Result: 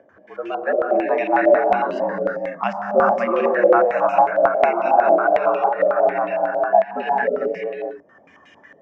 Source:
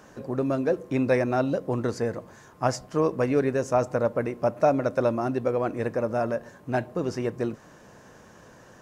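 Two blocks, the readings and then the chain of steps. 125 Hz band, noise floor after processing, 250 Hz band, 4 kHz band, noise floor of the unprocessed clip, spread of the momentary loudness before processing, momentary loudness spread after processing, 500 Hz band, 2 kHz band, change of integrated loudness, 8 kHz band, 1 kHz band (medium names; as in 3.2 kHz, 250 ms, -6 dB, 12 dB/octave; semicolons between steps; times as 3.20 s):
under -10 dB, -52 dBFS, -0.5 dB, no reading, -52 dBFS, 7 LU, 10 LU, +8.0 dB, +11.0 dB, +8.0 dB, under -15 dB, +13.5 dB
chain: upward compressor, threshold -30 dBFS; spectral noise reduction 20 dB; gated-style reverb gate 480 ms rising, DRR -3 dB; frequency shift +76 Hz; step-sequenced low-pass 11 Hz 580–2700 Hz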